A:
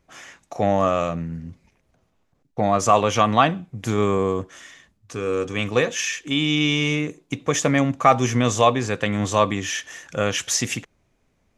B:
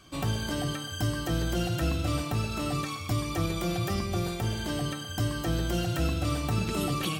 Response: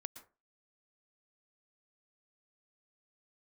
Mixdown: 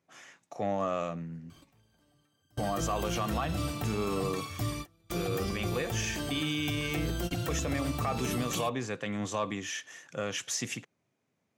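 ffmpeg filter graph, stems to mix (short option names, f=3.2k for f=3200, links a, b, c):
-filter_complex "[0:a]highpass=f=110:w=0.5412,highpass=f=110:w=1.3066,acontrast=27,volume=-15dB,asplit=2[a][b];[1:a]highshelf=f=12k:g=7,adelay=1500,volume=-4dB[c];[b]apad=whole_len=383502[d];[c][d]sidechaingate=range=-34dB:threshold=-58dB:ratio=16:detection=peak[e];[a][e]amix=inputs=2:normalize=0,alimiter=limit=-22dB:level=0:latency=1:release=57"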